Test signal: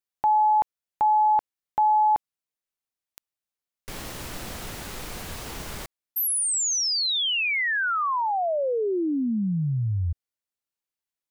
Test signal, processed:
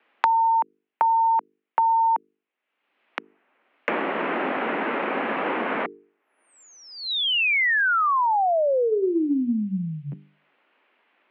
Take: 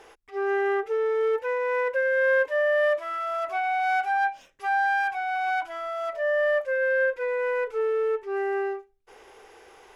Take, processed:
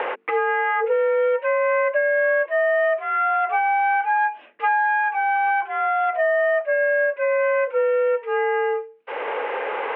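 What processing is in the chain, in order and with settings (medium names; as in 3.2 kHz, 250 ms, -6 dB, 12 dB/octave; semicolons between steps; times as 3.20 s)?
mistuned SSB +53 Hz 180–2700 Hz; hum notches 50/100/150/200/250/300/350/400/450 Hz; three bands compressed up and down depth 100%; trim +4 dB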